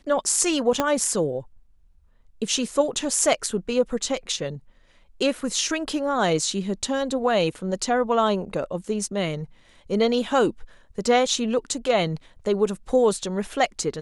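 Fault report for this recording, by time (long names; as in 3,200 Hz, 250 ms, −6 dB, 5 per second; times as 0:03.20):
0:00.80: click −7 dBFS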